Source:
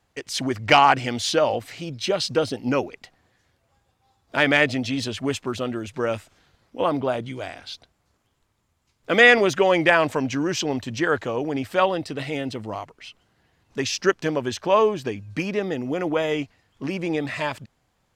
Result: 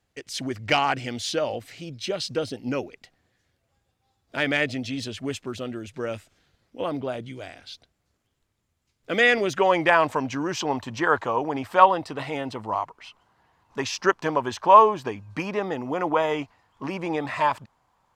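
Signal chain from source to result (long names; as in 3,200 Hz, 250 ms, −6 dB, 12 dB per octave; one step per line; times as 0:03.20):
parametric band 980 Hz −5 dB 0.93 octaves, from 0:09.57 +8.5 dB, from 0:10.61 +15 dB
level −4.5 dB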